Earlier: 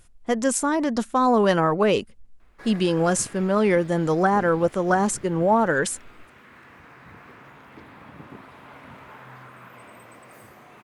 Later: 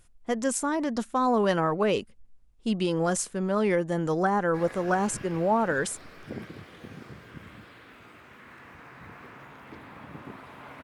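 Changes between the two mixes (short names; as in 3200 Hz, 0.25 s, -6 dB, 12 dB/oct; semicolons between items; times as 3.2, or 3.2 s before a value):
speech -5.0 dB; background: entry +1.95 s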